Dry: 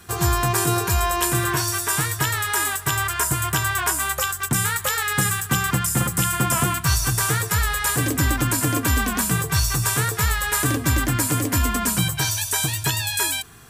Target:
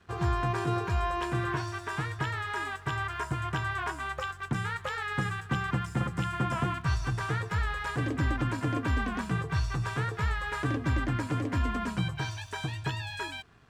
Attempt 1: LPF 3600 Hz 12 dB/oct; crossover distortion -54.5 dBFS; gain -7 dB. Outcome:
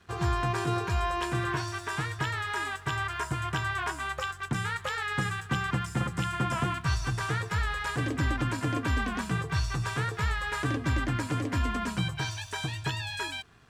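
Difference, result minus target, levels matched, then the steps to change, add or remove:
4000 Hz band +3.5 dB
add after LPF: high shelf 2800 Hz -7 dB

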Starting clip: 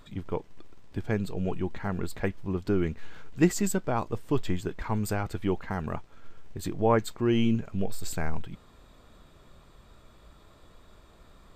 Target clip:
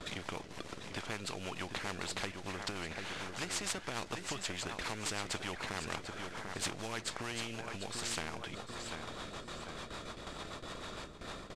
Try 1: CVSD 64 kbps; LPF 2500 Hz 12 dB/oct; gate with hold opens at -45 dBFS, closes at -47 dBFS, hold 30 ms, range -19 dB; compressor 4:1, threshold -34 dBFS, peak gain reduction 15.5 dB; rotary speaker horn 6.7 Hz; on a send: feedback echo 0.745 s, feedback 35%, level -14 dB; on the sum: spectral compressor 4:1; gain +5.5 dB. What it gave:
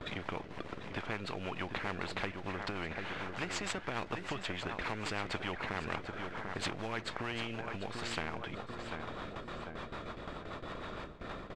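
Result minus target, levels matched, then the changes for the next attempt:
8000 Hz band -9.5 dB
change: LPF 6800 Hz 12 dB/oct

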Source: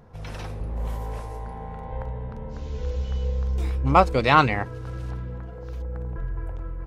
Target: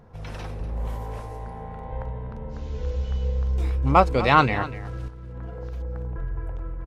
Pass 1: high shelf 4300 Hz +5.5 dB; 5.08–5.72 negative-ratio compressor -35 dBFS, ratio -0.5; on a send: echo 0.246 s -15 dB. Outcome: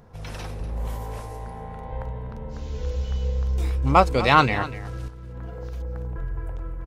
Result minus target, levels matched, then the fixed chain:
8000 Hz band +6.0 dB
high shelf 4300 Hz -3.5 dB; 5.08–5.72 negative-ratio compressor -35 dBFS, ratio -0.5; on a send: echo 0.246 s -15 dB

